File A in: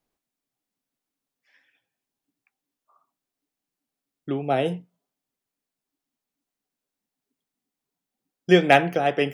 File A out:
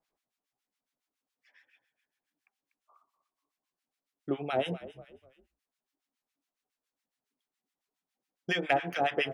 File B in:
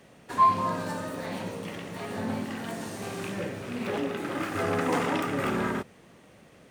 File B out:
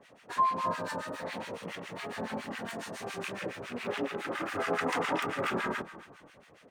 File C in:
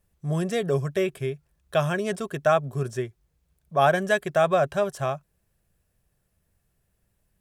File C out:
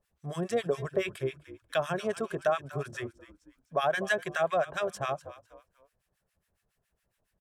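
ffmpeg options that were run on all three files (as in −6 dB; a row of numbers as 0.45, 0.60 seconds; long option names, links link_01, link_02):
-filter_complex "[0:a]bandreject=frequency=50:width_type=h:width=6,bandreject=frequency=100:width_type=h:width=6,bandreject=frequency=150:width_type=h:width=6,bandreject=frequency=200:width_type=h:width=6,bandreject=frequency=250:width_type=h:width=6,bandreject=frequency=300:width_type=h:width=6,bandreject=frequency=350:width_type=h:width=6,acompressor=threshold=-21dB:ratio=6,asplit=4[link_01][link_02][link_03][link_04];[link_02]adelay=244,afreqshift=-40,volume=-16dB[link_05];[link_03]adelay=488,afreqshift=-80,volume=-24.9dB[link_06];[link_04]adelay=732,afreqshift=-120,volume=-33.7dB[link_07];[link_01][link_05][link_06][link_07]amix=inputs=4:normalize=0,acrossover=split=1100[link_08][link_09];[link_08]aeval=exprs='val(0)*(1-1/2+1/2*cos(2*PI*7.2*n/s))':channel_layout=same[link_10];[link_09]aeval=exprs='val(0)*(1-1/2-1/2*cos(2*PI*7.2*n/s))':channel_layout=same[link_11];[link_10][link_11]amix=inputs=2:normalize=0,asplit=2[link_12][link_13];[link_13]highpass=frequency=720:poles=1,volume=9dB,asoftclip=type=tanh:threshold=-4dB[link_14];[link_12][link_14]amix=inputs=2:normalize=0,lowpass=frequency=4500:poles=1,volume=-6dB"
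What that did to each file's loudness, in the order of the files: −10.5, −4.5, −6.5 LU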